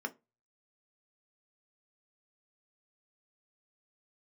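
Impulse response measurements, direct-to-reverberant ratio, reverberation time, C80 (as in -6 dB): 5.5 dB, 0.25 s, 30.0 dB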